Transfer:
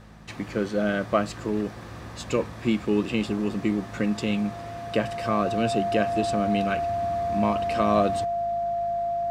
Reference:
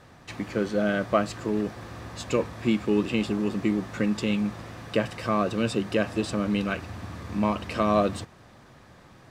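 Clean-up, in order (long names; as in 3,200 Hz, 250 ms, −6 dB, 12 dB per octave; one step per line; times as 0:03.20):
hum removal 52.9 Hz, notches 4
notch filter 690 Hz, Q 30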